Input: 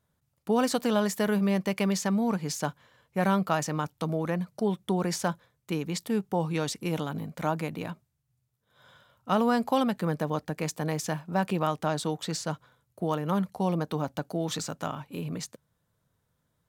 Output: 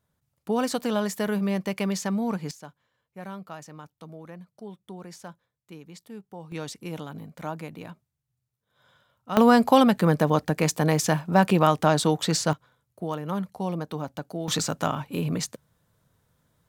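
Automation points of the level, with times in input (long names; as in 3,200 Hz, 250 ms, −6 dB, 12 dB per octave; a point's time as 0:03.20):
−0.5 dB
from 0:02.51 −13.5 dB
from 0:06.52 −5 dB
from 0:09.37 +8 dB
from 0:12.53 −2 dB
from 0:14.48 +7 dB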